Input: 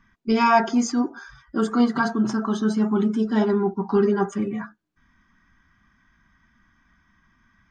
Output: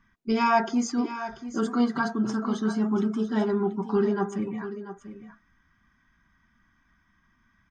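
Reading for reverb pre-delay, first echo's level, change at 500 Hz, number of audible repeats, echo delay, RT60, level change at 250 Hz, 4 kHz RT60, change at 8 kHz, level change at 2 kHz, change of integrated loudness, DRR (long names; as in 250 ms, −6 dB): no reverb audible, −12.5 dB, −4.5 dB, 1, 688 ms, no reverb audible, −4.0 dB, no reverb audible, can't be measured, −4.0 dB, −4.5 dB, no reverb audible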